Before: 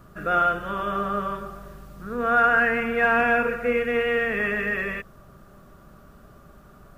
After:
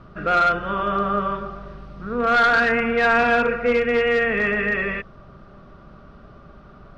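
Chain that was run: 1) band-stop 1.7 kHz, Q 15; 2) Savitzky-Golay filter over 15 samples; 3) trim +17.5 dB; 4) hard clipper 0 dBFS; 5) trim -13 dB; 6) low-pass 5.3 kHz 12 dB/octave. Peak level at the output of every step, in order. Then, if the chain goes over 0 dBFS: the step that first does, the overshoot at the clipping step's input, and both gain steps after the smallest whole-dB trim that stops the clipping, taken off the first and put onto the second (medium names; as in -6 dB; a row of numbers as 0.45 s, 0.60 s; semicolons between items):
-9.0 dBFS, -9.0 dBFS, +8.5 dBFS, 0.0 dBFS, -13.0 dBFS, -12.5 dBFS; step 3, 8.5 dB; step 3 +8.5 dB, step 5 -4 dB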